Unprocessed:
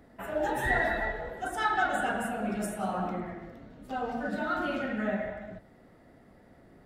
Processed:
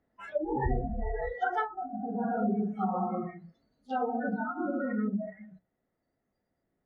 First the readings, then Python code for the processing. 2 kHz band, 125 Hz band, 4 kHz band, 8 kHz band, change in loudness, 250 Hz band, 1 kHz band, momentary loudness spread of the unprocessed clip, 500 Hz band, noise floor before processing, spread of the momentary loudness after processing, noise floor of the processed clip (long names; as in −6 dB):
−9.0 dB, +3.0 dB, below −10 dB, below −25 dB, −1.5 dB, +2.5 dB, −1.5 dB, 15 LU, −1.5 dB, −58 dBFS, 7 LU, −82 dBFS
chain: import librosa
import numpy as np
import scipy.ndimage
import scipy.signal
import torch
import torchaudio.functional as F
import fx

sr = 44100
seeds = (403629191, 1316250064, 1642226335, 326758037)

y = scipy.signal.sosfilt(scipy.signal.butter(2, 4300.0, 'lowpass', fs=sr, output='sos'), x)
y = fx.hum_notches(y, sr, base_hz=60, count=5)
y = fx.env_lowpass_down(y, sr, base_hz=370.0, full_db=-25.5)
y = fx.noise_reduce_blind(y, sr, reduce_db=27)
y = fx.rider(y, sr, range_db=3, speed_s=2.0)
y = y * 10.0 ** (5.0 / 20.0)